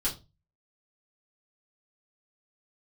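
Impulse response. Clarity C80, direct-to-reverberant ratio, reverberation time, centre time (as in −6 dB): 19.0 dB, −8.0 dB, 0.25 s, 20 ms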